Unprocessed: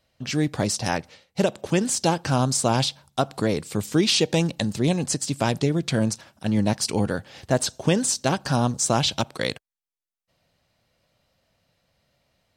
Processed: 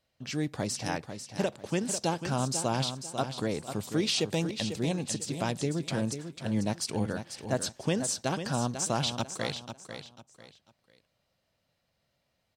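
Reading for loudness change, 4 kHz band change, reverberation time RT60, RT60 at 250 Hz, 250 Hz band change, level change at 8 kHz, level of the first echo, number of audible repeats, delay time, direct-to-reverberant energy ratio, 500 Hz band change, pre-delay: -8.0 dB, -7.5 dB, none, none, -8.0 dB, -7.5 dB, -9.0 dB, 3, 0.495 s, none, -7.5 dB, none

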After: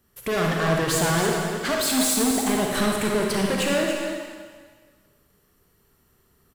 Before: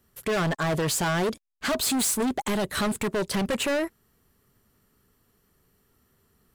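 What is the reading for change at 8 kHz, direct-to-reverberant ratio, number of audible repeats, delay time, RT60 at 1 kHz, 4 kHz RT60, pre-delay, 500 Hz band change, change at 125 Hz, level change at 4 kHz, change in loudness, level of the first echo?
+3.5 dB, -1.5 dB, 1, 0.282 s, 1.6 s, 1.6 s, 37 ms, +4.0 dB, +3.5 dB, +4.0 dB, +3.5 dB, -8.0 dB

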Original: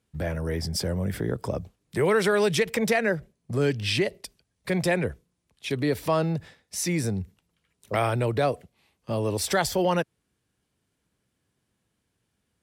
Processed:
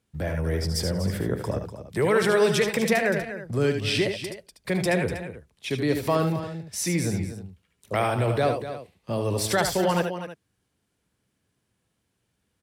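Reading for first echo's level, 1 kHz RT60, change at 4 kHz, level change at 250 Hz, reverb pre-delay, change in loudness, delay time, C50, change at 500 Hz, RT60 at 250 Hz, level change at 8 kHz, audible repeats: -7.5 dB, none, +1.0 dB, +1.5 dB, none, +1.0 dB, 75 ms, none, +1.0 dB, none, +1.0 dB, 3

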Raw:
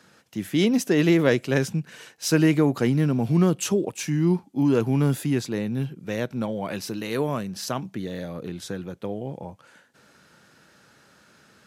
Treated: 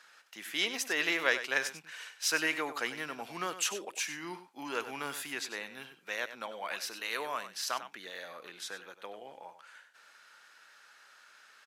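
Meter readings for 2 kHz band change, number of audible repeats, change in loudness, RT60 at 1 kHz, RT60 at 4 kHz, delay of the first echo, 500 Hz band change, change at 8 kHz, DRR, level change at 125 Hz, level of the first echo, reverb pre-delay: +0.5 dB, 1, -10.0 dB, none, none, 97 ms, -15.0 dB, -3.0 dB, none, -34.0 dB, -12.0 dB, none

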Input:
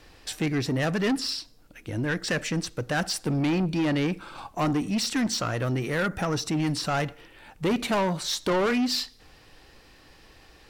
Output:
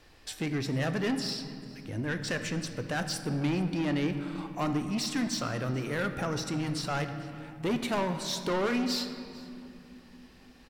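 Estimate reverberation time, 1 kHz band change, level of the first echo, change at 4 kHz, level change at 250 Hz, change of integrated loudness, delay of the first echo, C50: 2.8 s, -5.0 dB, -22.0 dB, -5.0 dB, -4.0 dB, -4.5 dB, 0.445 s, 9.0 dB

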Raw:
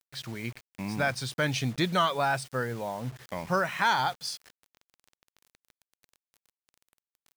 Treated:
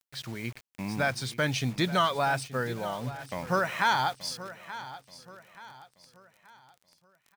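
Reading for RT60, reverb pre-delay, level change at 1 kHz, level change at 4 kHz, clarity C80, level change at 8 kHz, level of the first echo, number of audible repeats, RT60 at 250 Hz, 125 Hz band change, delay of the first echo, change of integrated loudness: none, none, 0.0 dB, 0.0 dB, none, 0.0 dB, -15.0 dB, 3, none, 0.0 dB, 0.879 s, -0.5 dB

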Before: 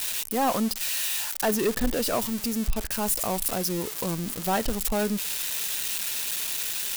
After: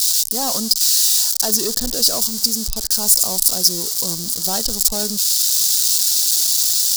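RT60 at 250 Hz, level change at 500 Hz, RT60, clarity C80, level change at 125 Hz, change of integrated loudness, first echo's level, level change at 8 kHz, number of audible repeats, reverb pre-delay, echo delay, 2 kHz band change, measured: none, -1.5 dB, none, none, -1.0 dB, +11.5 dB, none, +15.0 dB, none, none, none, -5.5 dB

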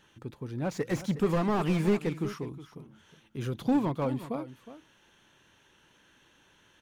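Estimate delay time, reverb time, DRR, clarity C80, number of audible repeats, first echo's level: 0.364 s, none, none, none, 1, -14.0 dB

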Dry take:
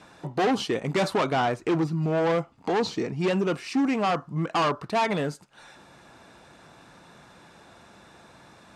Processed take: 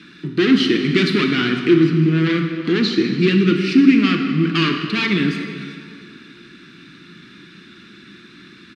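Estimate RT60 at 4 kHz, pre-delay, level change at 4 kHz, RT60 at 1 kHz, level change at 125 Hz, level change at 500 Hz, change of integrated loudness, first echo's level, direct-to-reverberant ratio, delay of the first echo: 1.6 s, 31 ms, +12.5 dB, 2.2 s, +10.5 dB, +4.5 dB, +9.5 dB, -18.5 dB, 3.5 dB, 0.385 s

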